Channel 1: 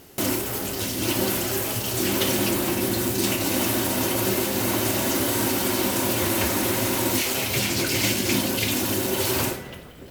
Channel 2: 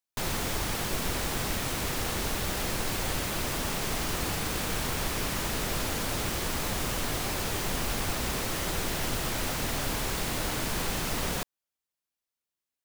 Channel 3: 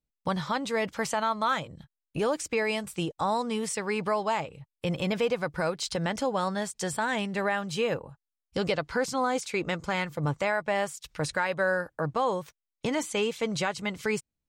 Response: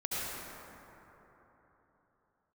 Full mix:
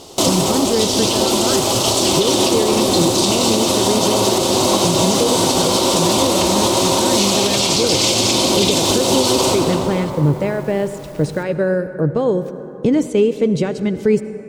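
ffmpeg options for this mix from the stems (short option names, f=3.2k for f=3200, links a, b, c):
-filter_complex "[0:a]firequalizer=gain_entry='entry(190,0);entry(510,8);entry(1100,9);entry(1600,-9);entry(3500,11);entry(8000,7);entry(15000,-15)':delay=0.05:min_phase=1,volume=3dB,asplit=2[a][b];[b]volume=-6.5dB[c];[1:a]asoftclip=type=tanh:threshold=-30dB,volume=-10.5dB,asplit=2[d][e];[e]volume=-18dB[f];[2:a]lowshelf=f=600:t=q:w=1.5:g=13.5,volume=-0.5dB,asplit=2[g][h];[h]volume=-16.5dB[i];[3:a]atrim=start_sample=2205[j];[c][f][i]amix=inputs=3:normalize=0[k];[k][j]afir=irnorm=-1:irlink=0[l];[a][d][g][l]amix=inputs=4:normalize=0,alimiter=limit=-5dB:level=0:latency=1:release=159"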